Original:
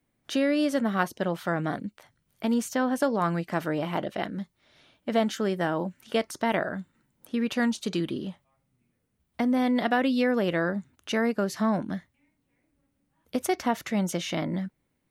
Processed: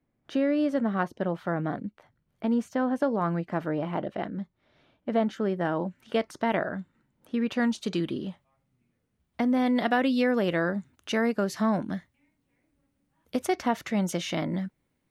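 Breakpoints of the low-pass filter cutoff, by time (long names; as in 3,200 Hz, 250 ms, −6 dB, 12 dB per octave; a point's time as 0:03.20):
low-pass filter 6 dB per octave
1,200 Hz
from 0:05.65 2,700 Hz
from 0:07.70 5,200 Hz
from 0:09.66 11,000 Hz
from 0:13.39 5,700 Hz
from 0:14.03 11,000 Hz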